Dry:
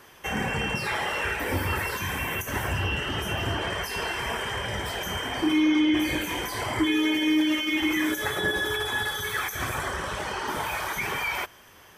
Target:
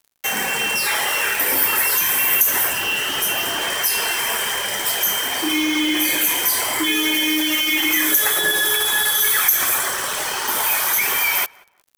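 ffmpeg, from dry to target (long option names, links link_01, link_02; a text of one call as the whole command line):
ffmpeg -i in.wav -filter_complex "[0:a]aemphasis=mode=production:type=riaa,acrossover=split=150[link_01][link_02];[link_01]acompressor=threshold=-57dB:ratio=6[link_03];[link_03][link_02]amix=inputs=2:normalize=0,acrusher=bits=4:mix=0:aa=0.5,asplit=2[link_04][link_05];[link_05]adelay=183,lowpass=frequency=2100:poles=1,volume=-23dB,asplit=2[link_06][link_07];[link_07]adelay=183,lowpass=frequency=2100:poles=1,volume=0.27[link_08];[link_04][link_06][link_08]amix=inputs=3:normalize=0,volume=5dB" out.wav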